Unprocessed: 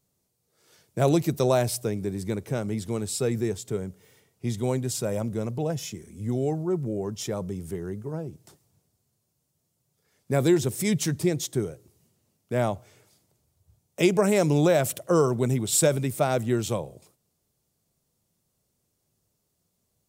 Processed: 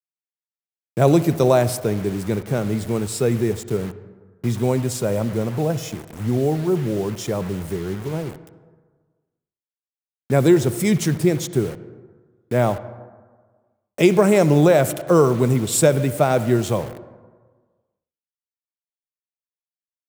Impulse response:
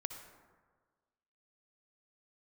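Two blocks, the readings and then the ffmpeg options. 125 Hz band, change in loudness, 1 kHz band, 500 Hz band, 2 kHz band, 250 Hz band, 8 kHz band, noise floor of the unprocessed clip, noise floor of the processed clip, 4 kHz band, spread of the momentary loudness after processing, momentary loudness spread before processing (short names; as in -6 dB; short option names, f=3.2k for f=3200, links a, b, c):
+6.5 dB, +6.5 dB, +6.5 dB, +6.5 dB, +6.0 dB, +6.5 dB, +2.0 dB, -76 dBFS, under -85 dBFS, +3.0 dB, 12 LU, 12 LU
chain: -filter_complex "[0:a]acrusher=bits=6:mix=0:aa=0.000001,asplit=2[a][b];[1:a]atrim=start_sample=2205,lowpass=3.2k[c];[b][c]afir=irnorm=-1:irlink=0,volume=-2.5dB[d];[a][d]amix=inputs=2:normalize=0,volume=2.5dB"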